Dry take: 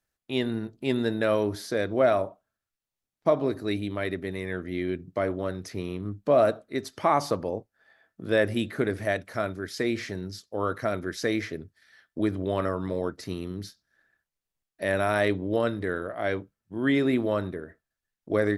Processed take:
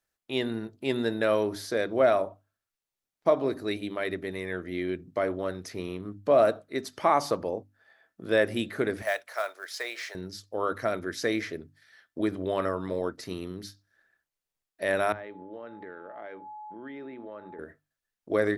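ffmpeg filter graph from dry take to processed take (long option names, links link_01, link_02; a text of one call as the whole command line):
ffmpeg -i in.wav -filter_complex "[0:a]asettb=1/sr,asplit=3[link_01][link_02][link_03];[link_01]atrim=end=9.024[link_04];[link_02]atrim=start=9.02:end=10.15,asetpts=PTS-STARTPTS,afade=type=in:duration=0.004:curve=qsin,afade=type=out:start_time=1.126:duration=0.004:curve=qsin,highpass=frequency=590:width=0.5412,highpass=frequency=590:width=1.3066,acrusher=bits=5:mode=log:mix=0:aa=0.000001[link_05];[link_03]atrim=start=10.146[link_06];[link_04][link_05]acrossfade=duration=0.004:curve1=hsin:curve2=qsin[link_07];[link_07][link_06]acrossfade=duration=0.004:curve1=qsin:curve2=hsin,asettb=1/sr,asplit=3[link_08][link_09][link_10];[link_08]atrim=end=15.124[link_11];[link_09]atrim=start=15.12:end=17.59,asetpts=PTS-STARTPTS,afade=type=in:duration=0.004:curve=qsin,afade=type=out:start_time=2.466:duration=0.004:curve=qsin,aeval=exprs='val(0)+0.0112*sin(2*PI*850*n/s)':channel_layout=same,highpass=170,lowpass=2400,acompressor=threshold=-40dB:ratio=4:attack=3.2:release=140:knee=1:detection=peak[link_12];[link_10]atrim=start=17.586[link_13];[link_11][link_12]acrossfade=duration=0.004:curve1=hsin:curve2=qsin[link_14];[link_14][link_13]acrossfade=duration=0.004:curve1=qsin:curve2=hsin,bass=frequency=250:gain=-5,treble=frequency=4000:gain=0,bandreject=frequency=50:width_type=h:width=6,bandreject=frequency=100:width_type=h:width=6,bandreject=frequency=150:width_type=h:width=6,bandreject=frequency=200:width_type=h:width=6,bandreject=frequency=250:width_type=h:width=6,bandreject=frequency=300:width_type=h:width=6" out.wav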